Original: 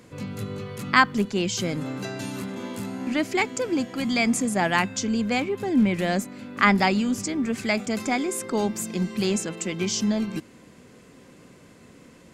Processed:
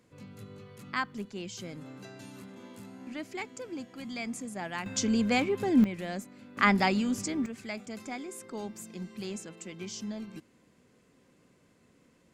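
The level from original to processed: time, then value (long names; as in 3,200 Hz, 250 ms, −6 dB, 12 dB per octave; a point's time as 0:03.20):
−14.5 dB
from 0:04.86 −2 dB
from 0:05.84 −12 dB
from 0:06.57 −5 dB
from 0:07.46 −14 dB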